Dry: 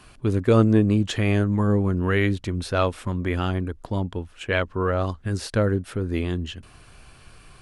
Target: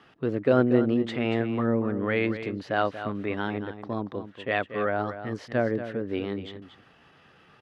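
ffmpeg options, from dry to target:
-af "asetrate=49501,aresample=44100,atempo=0.890899,highpass=190,lowpass=2800,aecho=1:1:234:0.282,volume=0.75"

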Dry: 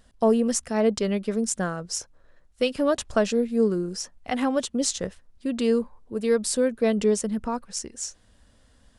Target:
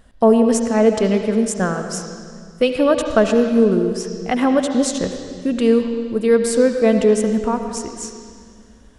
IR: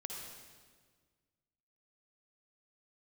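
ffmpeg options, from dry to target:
-filter_complex "[0:a]asplit=2[s0][s1];[s1]lowpass=4400[s2];[1:a]atrim=start_sample=2205,asetrate=33075,aresample=44100,lowpass=8400[s3];[s2][s3]afir=irnorm=-1:irlink=0,volume=0.944[s4];[s0][s4]amix=inputs=2:normalize=0,volume=1.41"

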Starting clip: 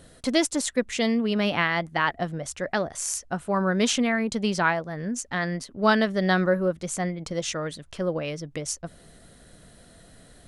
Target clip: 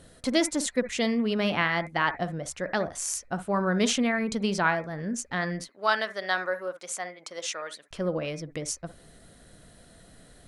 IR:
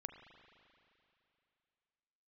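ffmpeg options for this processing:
-filter_complex "[0:a]asettb=1/sr,asplit=3[s0][s1][s2];[s0]atrim=end=5.644[s3];[s1]atrim=start=5.64:end=7.91,asetpts=PTS-STARTPTS,afade=t=in:d=0.004:c=qsin,afade=t=out:st=2.266:d=0.004:c=qsin,highpass=700[s4];[s2]atrim=start=7.906[s5];[s3][s4]acrossfade=d=0.004:c1=hsin:c2=qsin[s6];[s6][s5]acrossfade=d=0.004:c1=qsin:c2=hsin[s7];[1:a]atrim=start_sample=2205,atrim=end_sample=3087,asetrate=31752,aresample=44100[s8];[s7][s8]afir=irnorm=-1:irlink=0,volume=1.19"

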